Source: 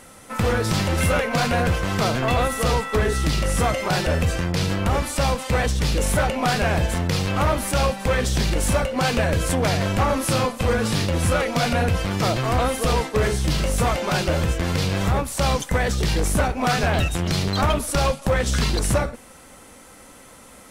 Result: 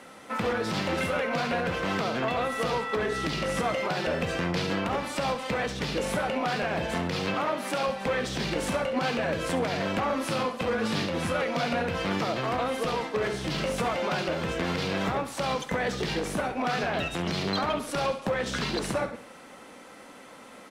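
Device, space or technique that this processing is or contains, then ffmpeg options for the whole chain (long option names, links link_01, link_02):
DJ mixer with the lows and highs turned down: -filter_complex "[0:a]acrossover=split=160 4900:gain=0.112 1 0.224[link_01][link_02][link_03];[link_01][link_02][link_03]amix=inputs=3:normalize=0,alimiter=limit=-18.5dB:level=0:latency=1:release=231,asettb=1/sr,asplit=3[link_04][link_05][link_06];[link_04]atrim=end=7.344[link_07];[link_05]atrim=start=7.34:end=7.88,asetpts=PTS-STARTPTS,afade=type=in:duration=0.004:curve=qsin,afade=type=out:start_time=0.536:duration=0.004:curve=qsin,highpass=190[link_08];[link_06]atrim=start=7.876[link_09];[link_07][link_08]acrossfade=duration=0.004:curve1=hsin:curve2=qsin[link_10];[link_10][link_09]acrossfade=duration=0.004:curve1=qsin:curve2=hsin,aecho=1:1:68|136|204|272:0.224|0.0963|0.0414|0.0178"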